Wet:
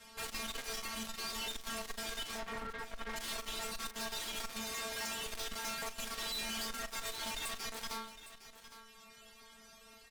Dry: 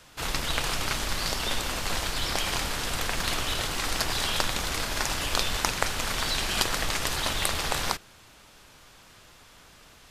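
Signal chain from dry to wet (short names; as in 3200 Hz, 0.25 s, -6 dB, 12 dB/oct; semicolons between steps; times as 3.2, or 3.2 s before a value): 2.37–3.16 steep low-pass 2100 Hz 36 dB/oct; reverb removal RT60 1.7 s; 0.77–1.47 negative-ratio compressor -35 dBFS, ratio -1; 4.47–5.26 HPF 60 Hz; metallic resonator 220 Hz, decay 0.38 s, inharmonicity 0.002; tube stage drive 53 dB, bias 0.5; doubler 41 ms -14 dB; echo 0.809 s -13.5 dB; gain +15 dB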